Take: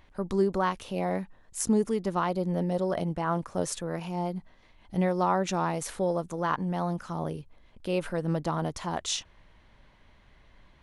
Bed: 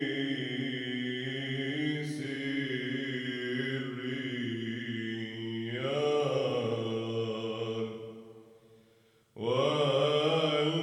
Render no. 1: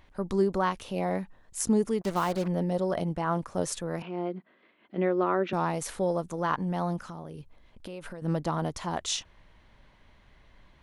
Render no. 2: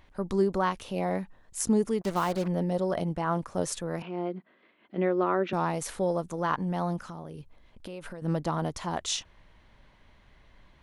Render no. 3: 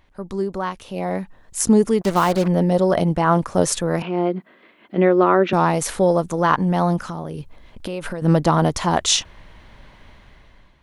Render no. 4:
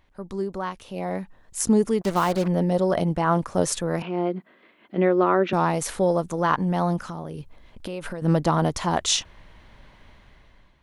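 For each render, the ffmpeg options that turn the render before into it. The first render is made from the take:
ffmpeg -i in.wav -filter_complex "[0:a]asettb=1/sr,asplit=3[link_01][link_02][link_03];[link_01]atrim=end=2.014[link_04];[link_02]atrim=start=2.01:end=2.48,asetpts=PTS-STARTPTS,afade=type=in:duration=0.004:curve=qsin,afade=type=out:start_time=0.466:duration=0.004:curve=qsin,acrusher=bits=5:mix=0:aa=0.5[link_05];[link_03]atrim=start=2.476[link_06];[link_04][link_05]acrossfade=duration=0.004:curve1=hsin:curve2=qsin[link_07];[link_07][link_06]acrossfade=duration=0.004:curve1=qsin:curve2=hsin,asettb=1/sr,asplit=3[link_08][link_09][link_10];[link_08]atrim=end=4.024[link_11];[link_09]atrim=start=4.02:end=5.53,asetpts=PTS-STARTPTS,afade=type=in:duration=0.004:curve=qsin,afade=type=out:start_time=1.506:duration=0.004:curve=qsin,highpass=frequency=210:width=0.5412,highpass=frequency=210:width=1.3066,equalizer=frequency=370:width_type=q:width=4:gain=6,equalizer=frequency=850:width_type=q:width=4:gain=-10,equalizer=frequency=1400:width_type=q:width=4:gain=3,lowpass=frequency=3100:width=0.5412,lowpass=frequency=3100:width=1.3066[link_12];[link_10]atrim=start=5.526[link_13];[link_11][link_12]acrossfade=duration=0.004:curve1=hsin:curve2=qsin[link_14];[link_14][link_13]acrossfade=duration=0.004:curve1=qsin:curve2=hsin,asettb=1/sr,asplit=3[link_15][link_16][link_17];[link_15]atrim=end=6.994[link_18];[link_16]atrim=start=6.99:end=8.22,asetpts=PTS-STARTPTS,afade=type=in:duration=0.004:curve=qsin,afade=type=out:start_time=1.226:duration=0.004:curve=qsin,acompressor=threshold=-36dB:ratio=10:attack=3.2:release=140:knee=1:detection=peak[link_19];[link_17]atrim=start=8.216[link_20];[link_18][link_19]acrossfade=duration=0.004:curve1=hsin:curve2=qsin[link_21];[link_21][link_20]acrossfade=duration=0.004:curve1=qsin:curve2=hsin" out.wav
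ffmpeg -i in.wav -af anull out.wav
ffmpeg -i in.wav -af "dynaudnorm=framelen=840:gausssize=3:maxgain=14dB" out.wav
ffmpeg -i in.wav -af "volume=-4.5dB" out.wav

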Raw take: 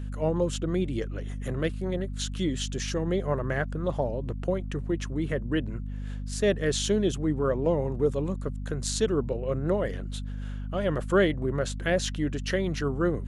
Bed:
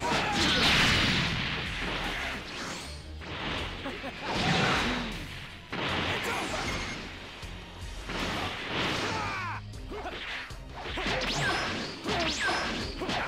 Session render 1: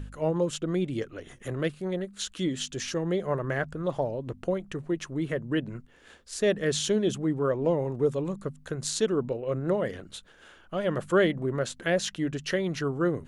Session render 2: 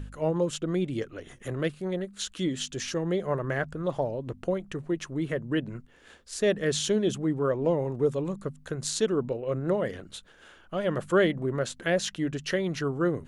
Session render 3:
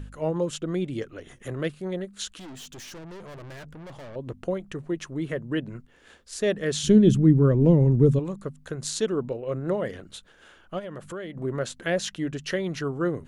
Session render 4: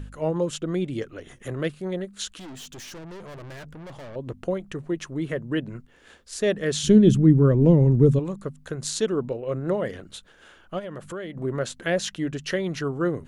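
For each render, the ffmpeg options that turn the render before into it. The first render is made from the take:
ffmpeg -i in.wav -af "bandreject=frequency=50:width_type=h:width=4,bandreject=frequency=100:width_type=h:width=4,bandreject=frequency=150:width_type=h:width=4,bandreject=frequency=200:width_type=h:width=4,bandreject=frequency=250:width_type=h:width=4" out.wav
ffmpeg -i in.wav -af anull out.wav
ffmpeg -i in.wav -filter_complex "[0:a]asettb=1/sr,asplit=3[link_01][link_02][link_03];[link_01]atrim=end=2.394[link_04];[link_02]atrim=start=2.39:end=4.16,asetpts=PTS-STARTPTS,afade=type=in:duration=0.004:curve=qsin,afade=type=out:start_time=1.766:duration=0.004:curve=qsin,aeval=exprs='(tanh(100*val(0)+0.35)-tanh(0.35))/100':channel_layout=same[link_05];[link_03]atrim=start=4.156[link_06];[link_04][link_05]acrossfade=duration=0.004:curve1=hsin:curve2=qsin[link_07];[link_07][link_06]acrossfade=duration=0.004:curve1=qsin:curve2=hsin,asplit=3[link_08][link_09][link_10];[link_08]afade=type=out:start_time=6.83:duration=0.02[link_11];[link_09]asubboost=boost=8:cutoff=250,afade=type=in:start_time=6.83:duration=0.02,afade=type=out:start_time=8.18:duration=0.02[link_12];[link_10]afade=type=in:start_time=8.18:duration=0.02[link_13];[link_11][link_12][link_13]amix=inputs=3:normalize=0,asplit=3[link_14][link_15][link_16];[link_14]afade=type=out:start_time=10.78:duration=0.02[link_17];[link_15]acompressor=threshold=-35dB:ratio=4:attack=3.2:release=140:knee=1:detection=peak,afade=type=in:start_time=10.78:duration=0.02,afade=type=out:start_time=11.36:duration=0.02[link_18];[link_16]afade=type=in:start_time=11.36:duration=0.02[link_19];[link_17][link_18][link_19]amix=inputs=3:normalize=0" out.wav
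ffmpeg -i in.wav -af "volume=1.5dB" out.wav

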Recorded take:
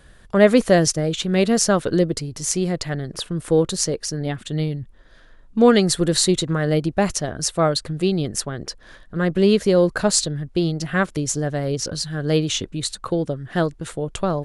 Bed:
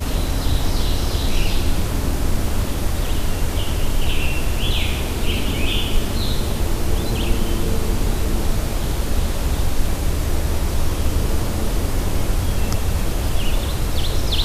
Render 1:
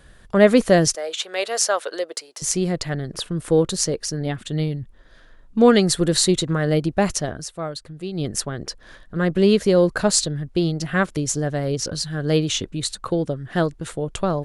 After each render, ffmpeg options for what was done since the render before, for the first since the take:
ffmpeg -i in.wav -filter_complex "[0:a]asettb=1/sr,asplit=3[link_01][link_02][link_03];[link_01]atrim=end=0.954[link_04];[link_02]atrim=start=0.95:end=2.42,asetpts=PTS-STARTPTS,afade=type=in:duration=0.004:curve=qsin,afade=type=out:start_time=1.466:duration=0.004:curve=qsin,highpass=frequency=530:width=0.5412,highpass=frequency=530:width=1.3066[link_05];[link_03]atrim=start=2.416[link_06];[link_04][link_05]acrossfade=duration=0.004:curve1=hsin:curve2=qsin[link_07];[link_07][link_06]acrossfade=duration=0.004:curve1=qsin:curve2=hsin,asplit=3[link_08][link_09][link_10];[link_08]atrim=end=7.44,asetpts=PTS-STARTPTS,afade=type=out:start_time=7.29:duration=0.15:curve=qsin:silence=0.298538[link_11];[link_09]atrim=start=7.44:end=8.13,asetpts=PTS-STARTPTS,volume=-10.5dB[link_12];[link_10]atrim=start=8.13,asetpts=PTS-STARTPTS,afade=type=in:duration=0.15:curve=qsin:silence=0.298538[link_13];[link_11][link_12][link_13]concat=n=3:v=0:a=1" out.wav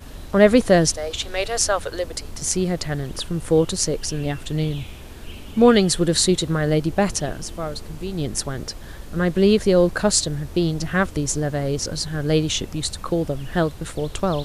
ffmpeg -i in.wav -i bed.wav -filter_complex "[1:a]volume=-16.5dB[link_01];[0:a][link_01]amix=inputs=2:normalize=0" out.wav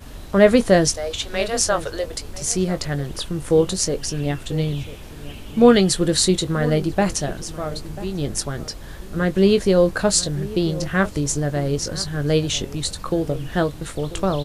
ffmpeg -i in.wav -filter_complex "[0:a]asplit=2[link_01][link_02];[link_02]adelay=21,volume=-11dB[link_03];[link_01][link_03]amix=inputs=2:normalize=0,asplit=2[link_04][link_05];[link_05]adelay=991.3,volume=-16dB,highshelf=frequency=4000:gain=-22.3[link_06];[link_04][link_06]amix=inputs=2:normalize=0" out.wav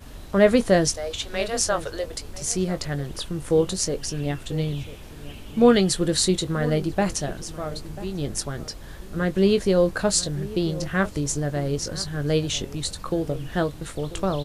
ffmpeg -i in.wav -af "volume=-3.5dB" out.wav

